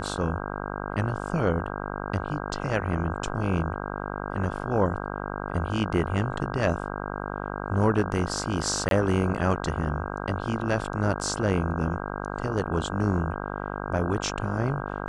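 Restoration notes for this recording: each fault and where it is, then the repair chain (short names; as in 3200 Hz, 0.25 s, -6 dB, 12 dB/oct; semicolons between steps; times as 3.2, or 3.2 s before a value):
buzz 50 Hz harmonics 32 -33 dBFS
8.89–8.91 gap 22 ms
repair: de-hum 50 Hz, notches 32; interpolate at 8.89, 22 ms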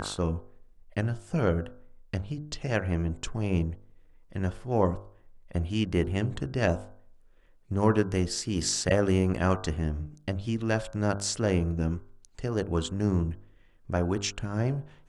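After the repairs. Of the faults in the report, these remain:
none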